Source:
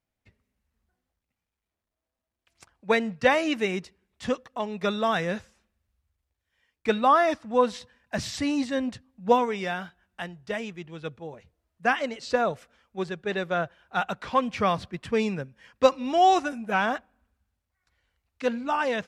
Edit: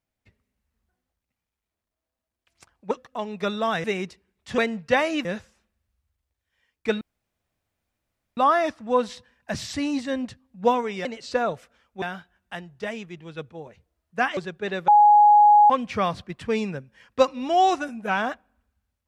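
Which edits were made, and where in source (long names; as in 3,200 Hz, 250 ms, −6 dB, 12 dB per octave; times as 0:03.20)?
0:02.91–0:03.58: swap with 0:04.32–0:05.25
0:07.01: splice in room tone 1.36 s
0:12.04–0:13.01: move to 0:09.69
0:13.52–0:14.34: beep over 833 Hz −10.5 dBFS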